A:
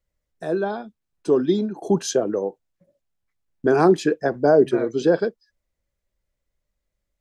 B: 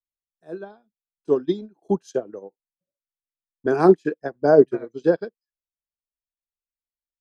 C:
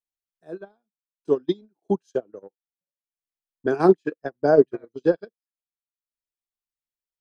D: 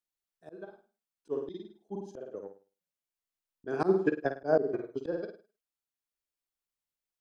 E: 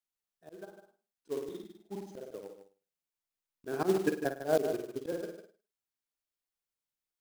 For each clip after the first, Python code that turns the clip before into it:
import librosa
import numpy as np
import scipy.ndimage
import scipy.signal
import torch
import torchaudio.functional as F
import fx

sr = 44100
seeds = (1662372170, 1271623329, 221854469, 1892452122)

y1 = fx.upward_expand(x, sr, threshold_db=-33.0, expansion=2.5)
y1 = F.gain(torch.from_numpy(y1), 4.0).numpy()
y2 = fx.transient(y1, sr, attack_db=3, sustain_db=-11)
y2 = fx.dynamic_eq(y2, sr, hz=3100.0, q=1.4, threshold_db=-44.0, ratio=4.0, max_db=4)
y2 = F.gain(torch.from_numpy(y2), -3.5).numpy()
y3 = fx.room_flutter(y2, sr, wall_m=9.0, rt60_s=0.36)
y3 = fx.auto_swell(y3, sr, attack_ms=240.0)
y4 = fx.quant_float(y3, sr, bits=2)
y4 = y4 + 10.0 ** (-10.0 / 20.0) * np.pad(y4, (int(151 * sr / 1000.0), 0))[:len(y4)]
y4 = F.gain(torch.from_numpy(y4), -2.5).numpy()